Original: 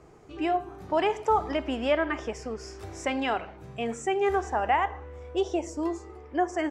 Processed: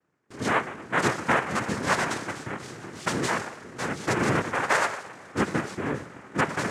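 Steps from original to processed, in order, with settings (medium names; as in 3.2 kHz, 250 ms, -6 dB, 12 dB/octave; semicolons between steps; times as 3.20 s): two-slope reverb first 0.95 s, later 2.8 s, DRR 6 dB; noise-vocoded speech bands 3; gate with hold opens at -37 dBFS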